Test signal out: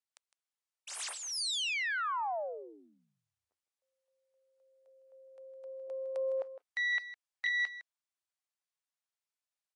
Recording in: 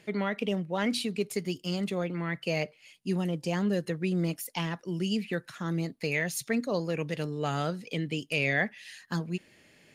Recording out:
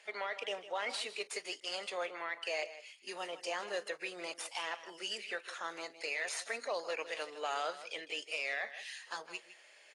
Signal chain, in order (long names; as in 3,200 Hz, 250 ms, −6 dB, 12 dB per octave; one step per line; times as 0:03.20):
stylus tracing distortion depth 0.07 ms
high-pass filter 590 Hz 24 dB per octave
brickwall limiter −27.5 dBFS
on a send: single-tap delay 158 ms −14 dB
on the sum: AAC 32 kbit/s 22,050 Hz